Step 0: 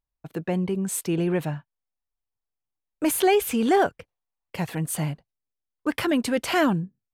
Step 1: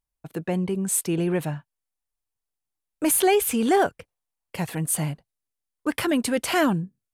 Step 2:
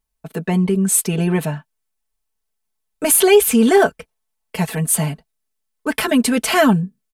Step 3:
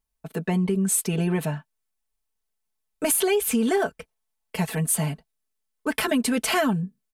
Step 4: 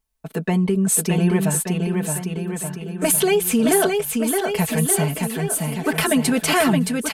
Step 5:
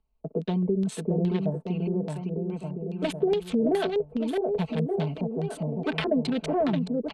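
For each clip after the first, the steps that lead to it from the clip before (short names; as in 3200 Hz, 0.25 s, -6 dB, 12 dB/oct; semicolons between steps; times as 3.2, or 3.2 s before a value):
bell 10000 Hz +7 dB 0.9 oct
comb 4.6 ms, depth 90%; gain +5 dB
compressor 6:1, threshold -15 dBFS, peak gain reduction 8.5 dB; gain -4 dB
bouncing-ball echo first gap 0.62 s, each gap 0.9×, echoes 5; gain +4 dB
Wiener smoothing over 25 samples; LFO low-pass square 2.4 Hz 550–3700 Hz; three-band squash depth 40%; gain -7.5 dB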